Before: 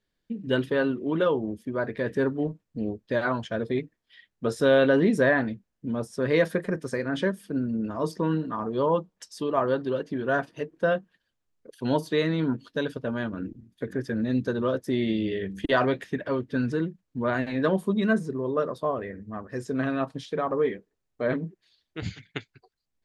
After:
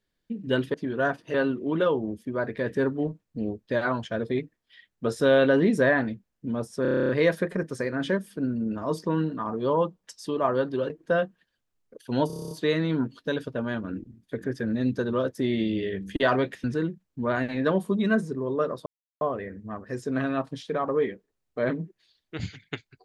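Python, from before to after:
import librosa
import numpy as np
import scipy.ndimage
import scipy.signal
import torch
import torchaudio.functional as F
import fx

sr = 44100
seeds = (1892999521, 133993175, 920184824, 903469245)

y = fx.edit(x, sr, fx.stutter(start_s=6.22, slice_s=0.03, count=10),
    fx.move(start_s=10.03, length_s=0.6, to_s=0.74),
    fx.stutter(start_s=12.0, slice_s=0.03, count=9),
    fx.cut(start_s=16.13, length_s=0.49),
    fx.insert_silence(at_s=18.84, length_s=0.35), tone=tone)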